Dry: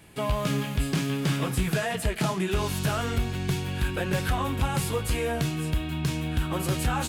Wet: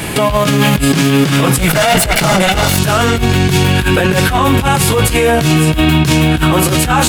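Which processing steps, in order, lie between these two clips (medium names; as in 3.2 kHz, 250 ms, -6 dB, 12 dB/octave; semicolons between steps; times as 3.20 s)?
1.58–2.78 s: comb filter that takes the minimum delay 1.4 ms; compressor with a negative ratio -34 dBFS, ratio -1; bass shelf 120 Hz -5 dB; loudness maximiser +28 dB; trim -1 dB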